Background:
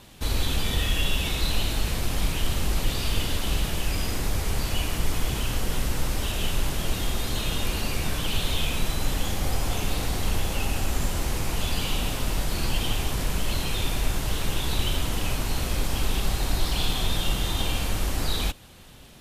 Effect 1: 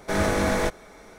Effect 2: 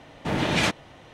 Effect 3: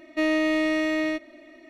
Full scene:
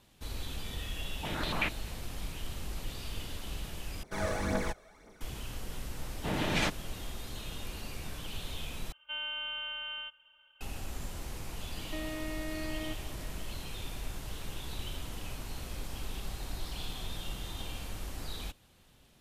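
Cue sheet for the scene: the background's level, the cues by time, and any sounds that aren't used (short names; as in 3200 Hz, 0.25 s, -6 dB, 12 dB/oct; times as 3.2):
background -14 dB
0.98 add 2 -13.5 dB + stepped low-pass 11 Hz 680–4200 Hz
4.03 replace with 1 -11.5 dB + phaser 1.9 Hz, delay 1.9 ms, feedback 52%
5.99 add 2 -7.5 dB
8.92 replace with 3 -15 dB + inverted band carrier 3400 Hz
11.76 add 3 -5 dB + compressor, threshold -33 dBFS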